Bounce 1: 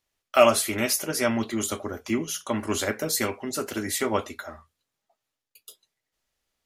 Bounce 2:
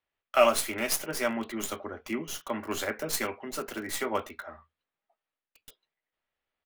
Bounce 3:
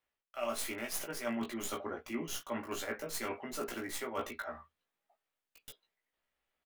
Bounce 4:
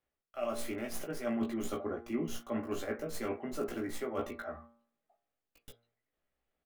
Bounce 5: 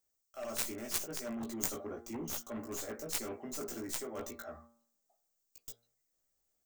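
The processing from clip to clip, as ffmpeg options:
ffmpeg -i in.wav -filter_complex "[0:a]lowshelf=frequency=270:gain=-10.5,acrossover=split=190|3400[link_01][link_02][link_03];[link_01]asplit=2[link_04][link_05];[link_05]adelay=13,volume=-3dB[link_06];[link_04][link_06]amix=inputs=2:normalize=0[link_07];[link_03]acrusher=bits=4:dc=4:mix=0:aa=0.000001[link_08];[link_07][link_02][link_08]amix=inputs=3:normalize=0,volume=-2.5dB" out.wav
ffmpeg -i in.wav -filter_complex "[0:a]areverse,acompressor=threshold=-35dB:ratio=12,areverse,asplit=2[link_01][link_02];[link_02]adelay=17,volume=-2.5dB[link_03];[link_01][link_03]amix=inputs=2:normalize=0,volume=-1dB" out.wav
ffmpeg -i in.wav -af "tiltshelf=frequency=970:gain=6.5,bandreject=frequency=950:width=11,bandreject=frequency=116.8:width_type=h:width=4,bandreject=frequency=233.6:width_type=h:width=4,bandreject=frequency=350.4:width_type=h:width=4,bandreject=frequency=467.2:width_type=h:width=4,bandreject=frequency=584:width_type=h:width=4,bandreject=frequency=700.8:width_type=h:width=4,bandreject=frequency=817.6:width_type=h:width=4,bandreject=frequency=934.4:width_type=h:width=4,bandreject=frequency=1051.2:width_type=h:width=4,bandreject=frequency=1168:width_type=h:width=4,bandreject=frequency=1284.8:width_type=h:width=4,bandreject=frequency=1401.6:width_type=h:width=4,bandreject=frequency=1518.4:width_type=h:width=4,bandreject=frequency=1635.2:width_type=h:width=4,bandreject=frequency=1752:width_type=h:width=4,bandreject=frequency=1868.8:width_type=h:width=4,bandreject=frequency=1985.6:width_type=h:width=4,bandreject=frequency=2102.4:width_type=h:width=4,bandreject=frequency=2219.2:width_type=h:width=4,bandreject=frequency=2336:width_type=h:width=4" out.wav
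ffmpeg -i in.wav -af "highshelf=frequency=4000:width_type=q:width=1.5:gain=12.5,aexciter=amount=1.1:drive=4.7:freq=6600,aeval=exprs='0.266*(cos(1*acos(clip(val(0)/0.266,-1,1)))-cos(1*PI/2))+0.0299*(cos(3*acos(clip(val(0)/0.266,-1,1)))-cos(3*PI/2))+0.0473*(cos(7*acos(clip(val(0)/0.266,-1,1)))-cos(7*PI/2))':channel_layout=same,volume=1dB" out.wav

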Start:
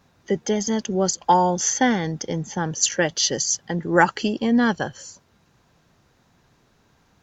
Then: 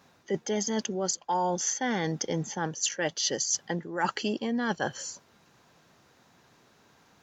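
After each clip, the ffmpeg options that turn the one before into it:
ffmpeg -i in.wav -af "highpass=frequency=260:poles=1,areverse,acompressor=threshold=-27dB:ratio=16,areverse,volume=2dB" out.wav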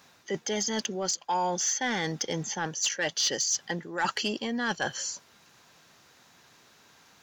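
ffmpeg -i in.wav -filter_complex "[0:a]tiltshelf=frequency=1200:gain=-5,asoftclip=type=tanh:threshold=-21dB,acrossover=split=6900[link_01][link_02];[link_02]acompressor=threshold=-46dB:ratio=4:attack=1:release=60[link_03];[link_01][link_03]amix=inputs=2:normalize=0,volume=2.5dB" out.wav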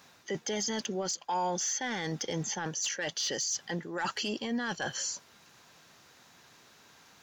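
ffmpeg -i in.wav -af "alimiter=level_in=1.5dB:limit=-24dB:level=0:latency=1:release=10,volume=-1.5dB" out.wav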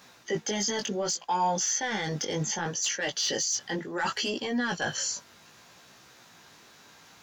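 ffmpeg -i in.wav -af "flanger=delay=15.5:depth=5.2:speed=0.67,volume=7dB" out.wav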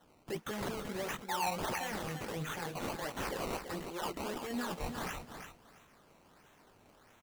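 ffmpeg -i in.wav -af "acrusher=samples=18:mix=1:aa=0.000001:lfo=1:lforange=18:lforate=1.5,aecho=1:1:335|670|1005:0.398|0.0717|0.0129,volume=-9dB" out.wav

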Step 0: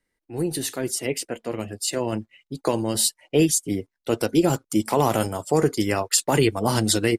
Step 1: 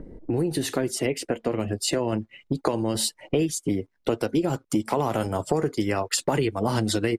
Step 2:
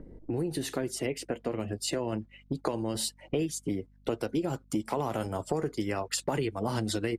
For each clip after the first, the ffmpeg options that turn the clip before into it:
ffmpeg -i in.wav -filter_complex "[0:a]acrossover=split=570[link_01][link_02];[link_01]acompressor=mode=upward:threshold=-23dB:ratio=2.5[link_03];[link_03][link_02]amix=inputs=2:normalize=0,highshelf=frequency=5100:gain=-11.5,acompressor=threshold=-29dB:ratio=5,volume=7.5dB" out.wav
ffmpeg -i in.wav -af "aeval=exprs='val(0)+0.00251*(sin(2*PI*50*n/s)+sin(2*PI*2*50*n/s)/2+sin(2*PI*3*50*n/s)/3+sin(2*PI*4*50*n/s)/4+sin(2*PI*5*50*n/s)/5)':channel_layout=same,volume=-6.5dB" out.wav

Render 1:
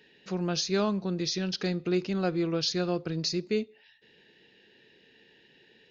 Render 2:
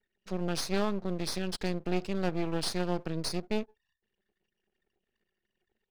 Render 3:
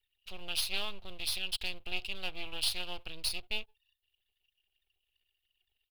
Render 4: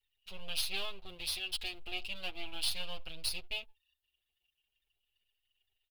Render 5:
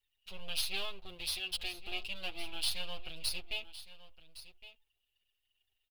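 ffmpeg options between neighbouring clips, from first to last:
ffmpeg -i in.wav -af "anlmdn=0.00631,aeval=exprs='max(val(0),0)':channel_layout=same" out.wav
ffmpeg -i in.wav -af "firequalizer=gain_entry='entry(100,0);entry(160,-23);entry(770,-9);entry(1800,-10);entry(2800,12);entry(6100,-7);entry(11000,7)':delay=0.05:min_phase=1" out.wav
ffmpeg -i in.wav -filter_complex "[0:a]asplit=2[link_01][link_02];[link_02]adelay=6.9,afreqshift=-0.39[link_03];[link_01][link_03]amix=inputs=2:normalize=1,volume=1dB" out.wav
ffmpeg -i in.wav -af "aecho=1:1:1113:0.168" out.wav

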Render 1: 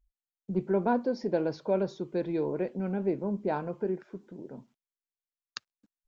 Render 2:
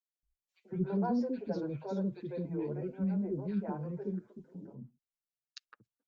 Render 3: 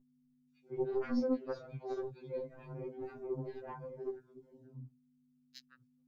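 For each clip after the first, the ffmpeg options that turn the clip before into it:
ffmpeg -i in.wav -filter_complex "[0:a]equalizer=frequency=120:width_type=o:width=2:gain=11,acrossover=split=440|1800[link_01][link_02][link_03];[link_02]adelay=160[link_04];[link_01]adelay=230[link_05];[link_05][link_04][link_03]amix=inputs=3:normalize=0,asplit=2[link_06][link_07];[link_07]adelay=6.6,afreqshift=1.9[link_08];[link_06][link_08]amix=inputs=2:normalize=1,volume=-5.5dB" out.wav
ffmpeg -i in.wav -af "aeval=exprs='val(0)+0.00158*(sin(2*PI*50*n/s)+sin(2*PI*2*50*n/s)/2+sin(2*PI*3*50*n/s)/3+sin(2*PI*4*50*n/s)/4+sin(2*PI*5*50*n/s)/5)':channel_layout=same,aeval=exprs='0.0794*(cos(1*acos(clip(val(0)/0.0794,-1,1)))-cos(1*PI/2))+0.0158*(cos(3*acos(clip(val(0)/0.0794,-1,1)))-cos(3*PI/2))':channel_layout=same,afftfilt=real='re*2.45*eq(mod(b,6),0)':imag='im*2.45*eq(mod(b,6),0)':win_size=2048:overlap=0.75,volume=5dB" out.wav

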